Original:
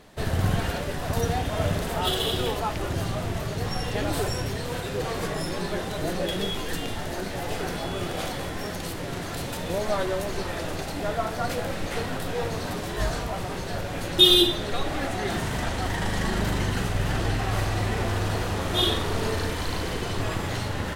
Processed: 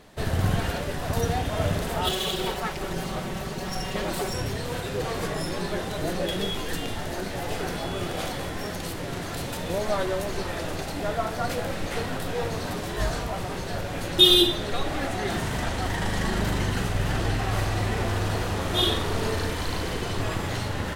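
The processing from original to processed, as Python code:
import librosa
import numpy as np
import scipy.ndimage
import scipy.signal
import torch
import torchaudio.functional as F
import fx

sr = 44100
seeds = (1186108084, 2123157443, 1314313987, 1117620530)

y = fx.lower_of_two(x, sr, delay_ms=5.3, at=(2.09, 4.34))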